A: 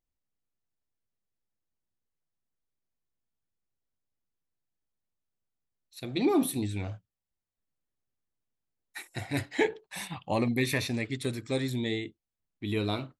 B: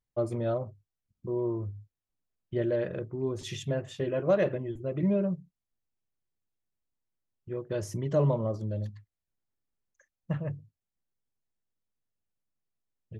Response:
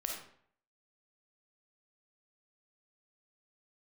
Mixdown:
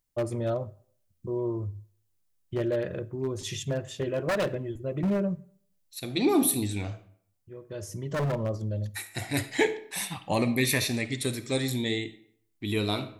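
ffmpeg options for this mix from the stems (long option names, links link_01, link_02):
-filter_complex "[0:a]volume=-1dB,asplit=3[link_01][link_02][link_03];[link_02]volume=-8dB[link_04];[1:a]equalizer=frequency=87:width_type=o:width=0.3:gain=7,acontrast=57,aeval=exprs='0.168*(abs(mod(val(0)/0.168+3,4)-2)-1)':channel_layout=same,volume=-6.5dB,asplit=2[link_05][link_06];[link_06]volume=-19.5dB[link_07];[link_03]apad=whole_len=581810[link_08];[link_05][link_08]sidechaincompress=threshold=-51dB:ratio=5:attack=16:release=1010[link_09];[2:a]atrim=start_sample=2205[link_10];[link_04][link_07]amix=inputs=2:normalize=0[link_11];[link_11][link_10]afir=irnorm=-1:irlink=0[link_12];[link_01][link_09][link_12]amix=inputs=3:normalize=0,highshelf=frequency=5100:gain=10"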